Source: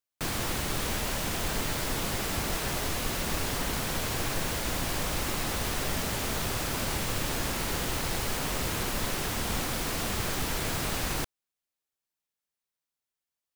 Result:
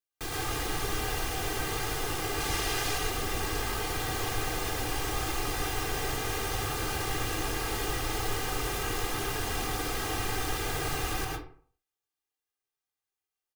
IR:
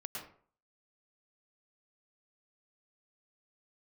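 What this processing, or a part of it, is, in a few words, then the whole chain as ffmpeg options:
microphone above a desk: -filter_complex "[0:a]asettb=1/sr,asplit=3[a][b][c];[a]atrim=end=2.404[d];[b]atrim=start=2.4:end=2.98,asetpts=PTS-STARTPTS,afade=t=in:d=0.004:c=qsin,afade=t=out:st=0.576:d=0.004:c=qsin,equalizer=f=4.6k:t=o:w=2.7:g=5[e];[c]atrim=start=2.976[f];[d][e]acrossfade=d=0.004:c1=hsin:c2=qsin[g];[g][f]acrossfade=d=0.004:c1=qsin:c2=hsin,aecho=1:1:2.5:0.78[h];[1:a]atrim=start_sample=2205[i];[h][i]afir=irnorm=-1:irlink=0,volume=-1.5dB"

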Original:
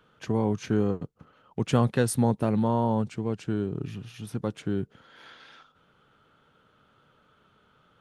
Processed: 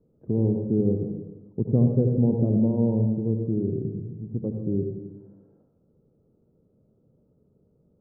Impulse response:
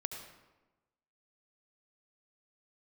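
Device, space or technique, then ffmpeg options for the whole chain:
next room: -filter_complex "[0:a]lowpass=f=480:w=0.5412,lowpass=f=480:w=1.3066[a];[1:a]atrim=start_sample=2205[b];[a][b]afir=irnorm=-1:irlink=0,volume=3.5dB"

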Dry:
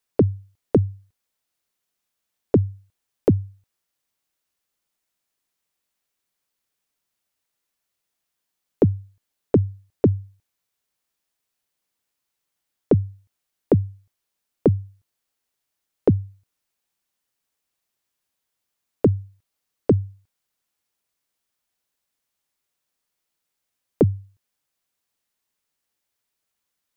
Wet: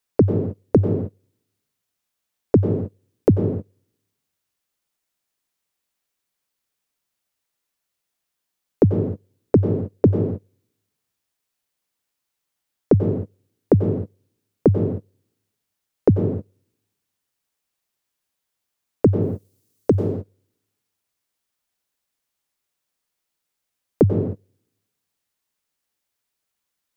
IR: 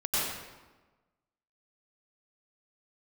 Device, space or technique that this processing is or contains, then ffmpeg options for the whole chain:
keyed gated reverb: -filter_complex "[0:a]asettb=1/sr,asplit=3[a][b][c];[a]atrim=end=19.224[d];[b]atrim=start=19.22:end=19.95,asetpts=PTS-STARTPTS,afade=t=in:d=0.004:c=qsin,afade=t=out:st=0.726:d=0.004:c=qsin,bass=f=250:g=-4,treble=f=4k:g=12[e];[c]atrim=start=19.946[f];[d][e]acrossfade=d=0.004:c1=hsin:c2=qsin[g];[g][f]acrossfade=d=0.004:c1=qsin:c2=hsin,asplit=3[h][i][j];[1:a]atrim=start_sample=2205[k];[i][k]afir=irnorm=-1:irlink=0[l];[j]apad=whole_len=1189375[m];[l][m]sidechaingate=range=-33dB:threshold=-44dB:ratio=16:detection=peak,volume=-12dB[n];[h][n]amix=inputs=2:normalize=0"

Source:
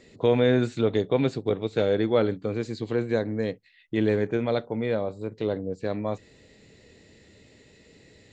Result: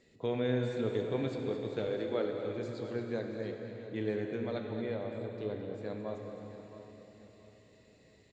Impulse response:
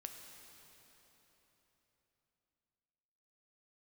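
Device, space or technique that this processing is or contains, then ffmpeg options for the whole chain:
cave: -filter_complex "[0:a]asettb=1/sr,asplit=3[a][b][c];[a]atrim=end=1.874[d];[b]atrim=start=1.87:end=2.38,asetpts=PTS-STARTPTS,afade=t=in:d=0.004:c=qsin,afade=t=out:st=0.506:d=0.004:c=qsin,highpass=f=240:w=0.5412,highpass=f=240:w=1.3066[e];[c]atrim=start=2.376[f];[d][e]acrossfade=d=0.004:c1=hsin:c2=qsin[g];[g][f]acrossfade=d=0.004:c1=qsin:c2=hsin,aecho=1:1:218:0.282[h];[1:a]atrim=start_sample=2205[i];[h][i]afir=irnorm=-1:irlink=0,aecho=1:1:676|1352|2028:0.188|0.0659|0.0231,volume=-6.5dB"

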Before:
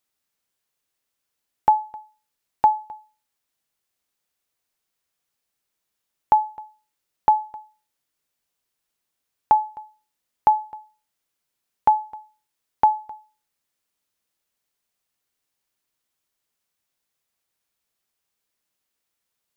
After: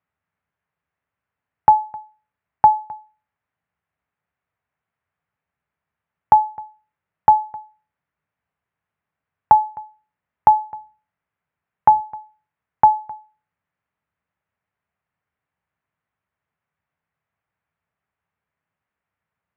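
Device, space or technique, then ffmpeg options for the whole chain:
bass cabinet: -filter_complex "[0:a]highpass=69,equalizer=f=69:t=q:w=4:g=9,equalizer=f=100:t=q:w=4:g=7,equalizer=f=160:t=q:w=4:g=7,equalizer=f=240:t=q:w=4:g=-3,equalizer=f=340:t=q:w=4:g=-8,equalizer=f=500:t=q:w=4:g=-4,lowpass=f=2.1k:w=0.5412,lowpass=f=2.1k:w=1.3066,asettb=1/sr,asplit=3[a][b][c];[a]atrim=end=10.604[d];[b]atrim=start=10.6:end=12.01,asetpts=PTS-STARTPTS,afade=t=in:d=0.004:c=qsin,afade=t=out:st=1.406:d=0.004:c=qsin,bandreject=f=65.82:t=h:w=4,bandreject=f=131.64:t=h:w=4,bandreject=f=197.46:t=h:w=4,bandreject=f=263.28:t=h:w=4[e];[c]atrim=start=12.006[f];[d][e]acrossfade=d=0.004:c1=hsin:c2=qsin[g];[g][f]acrossfade=d=0.004:c1=qsin:c2=hsin,volume=5dB"

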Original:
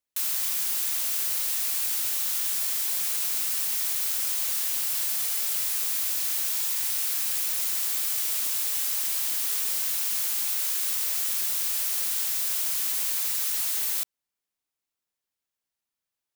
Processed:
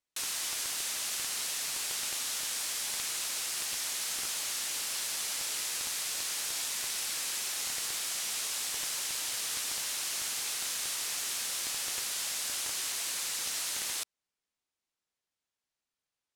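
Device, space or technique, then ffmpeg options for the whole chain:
overflowing digital effects unit: -af "aeval=exprs='(mod(5.96*val(0)+1,2)-1)/5.96':c=same,lowpass=8.4k"

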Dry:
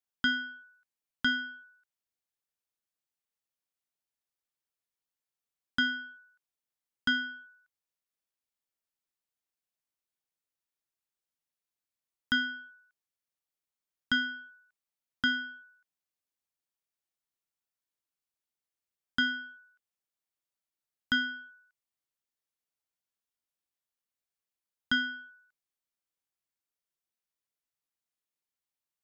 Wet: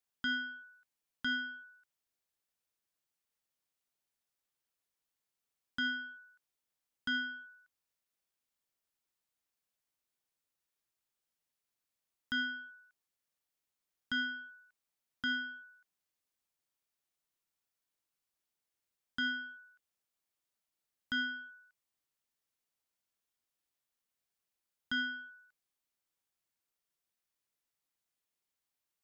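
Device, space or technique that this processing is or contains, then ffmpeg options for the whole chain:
stacked limiters: -af "alimiter=level_in=1.5dB:limit=-24dB:level=0:latency=1,volume=-1.5dB,alimiter=level_in=8dB:limit=-24dB:level=0:latency=1:release=468,volume=-8dB,volume=2.5dB"

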